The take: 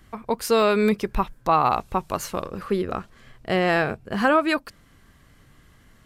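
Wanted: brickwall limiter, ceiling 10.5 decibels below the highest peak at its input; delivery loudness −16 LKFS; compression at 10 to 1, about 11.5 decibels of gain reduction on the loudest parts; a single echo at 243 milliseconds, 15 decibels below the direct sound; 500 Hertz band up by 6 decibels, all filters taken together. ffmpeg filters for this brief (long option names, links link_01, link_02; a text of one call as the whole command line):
ffmpeg -i in.wav -af "equalizer=frequency=500:width_type=o:gain=7.5,acompressor=threshold=-21dB:ratio=10,alimiter=limit=-21dB:level=0:latency=1,aecho=1:1:243:0.178,volume=15.5dB" out.wav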